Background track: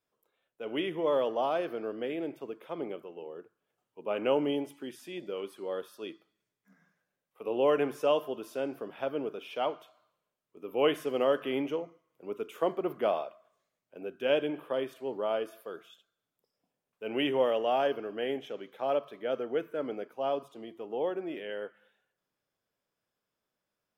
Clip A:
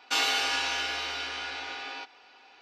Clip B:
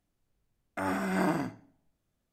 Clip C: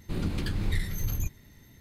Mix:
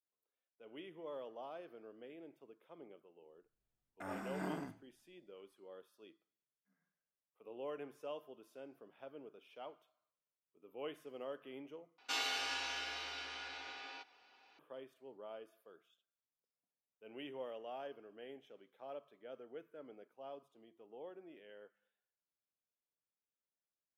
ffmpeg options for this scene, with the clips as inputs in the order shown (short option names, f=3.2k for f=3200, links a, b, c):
-filter_complex "[0:a]volume=-19dB,asplit=2[a][b];[a]atrim=end=11.984[c];[1:a]atrim=end=2.61,asetpts=PTS-STARTPTS,volume=-11.5dB[d];[b]atrim=start=14.586[e];[2:a]atrim=end=2.32,asetpts=PTS-STARTPTS,volume=-14dB,afade=t=in:d=0.004:c=hsin,afade=t=out:st=2.316:d=0.004:c=hsin,adelay=3230[f];[c][d]acrossfade=d=0.004:c1=hsin:c2=hsin[g];[g][e]acrossfade=d=0.004:c1=hsin:c2=hsin[h];[h][f]amix=inputs=2:normalize=0"